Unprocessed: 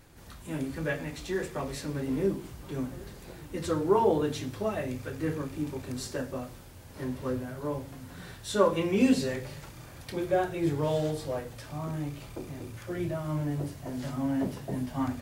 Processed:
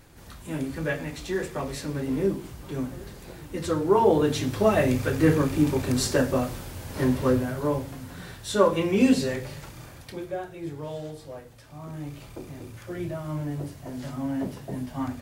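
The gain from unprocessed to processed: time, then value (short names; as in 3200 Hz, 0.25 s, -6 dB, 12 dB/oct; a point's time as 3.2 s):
3.89 s +3 dB
4.81 s +11.5 dB
7.06 s +11.5 dB
8.28 s +3.5 dB
9.85 s +3.5 dB
10.39 s -7 dB
11.68 s -7 dB
12.15 s 0 dB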